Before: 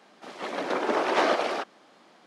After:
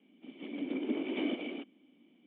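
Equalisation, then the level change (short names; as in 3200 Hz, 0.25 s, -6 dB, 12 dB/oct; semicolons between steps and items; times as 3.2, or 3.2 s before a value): vocal tract filter i; HPF 130 Hz; +4.5 dB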